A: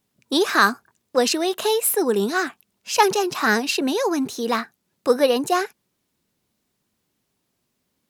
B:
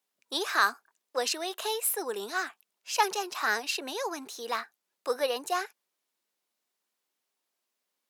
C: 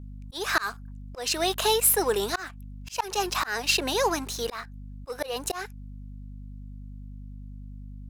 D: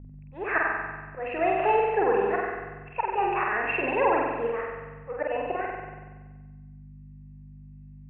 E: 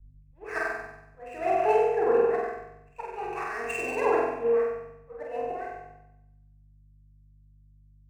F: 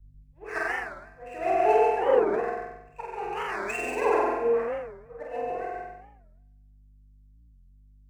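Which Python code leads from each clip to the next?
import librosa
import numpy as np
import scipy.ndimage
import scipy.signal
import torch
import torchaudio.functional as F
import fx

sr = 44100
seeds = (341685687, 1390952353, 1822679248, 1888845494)

y1 = scipy.signal.sosfilt(scipy.signal.butter(2, 580.0, 'highpass', fs=sr, output='sos'), x)
y1 = F.gain(torch.from_numpy(y1), -7.5).numpy()
y2 = fx.leveller(y1, sr, passes=2)
y2 = fx.add_hum(y2, sr, base_hz=50, snr_db=15)
y2 = fx.auto_swell(y2, sr, attack_ms=275.0)
y2 = F.gain(torch.from_numpy(y2), 1.5).numpy()
y3 = scipy.signal.sosfilt(scipy.signal.cheby1(6, 6, 2700.0, 'lowpass', fs=sr, output='sos'), y2)
y3 = fx.room_flutter(y3, sr, wall_m=8.1, rt60_s=1.3)
y3 = F.gain(torch.from_numpy(y3), 2.0).numpy()
y4 = scipy.signal.medfilt(y3, 9)
y4 = fx.rev_fdn(y4, sr, rt60_s=0.69, lf_ratio=0.9, hf_ratio=0.8, size_ms=13.0, drr_db=2.0)
y4 = fx.band_widen(y4, sr, depth_pct=70)
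y4 = F.gain(torch.from_numpy(y4), -7.0).numpy()
y5 = y4 + 10.0 ** (-4.0 / 20.0) * np.pad(y4, (int(136 * sr / 1000.0), 0))[:len(y4)]
y5 = fx.record_warp(y5, sr, rpm=45.0, depth_cents=250.0)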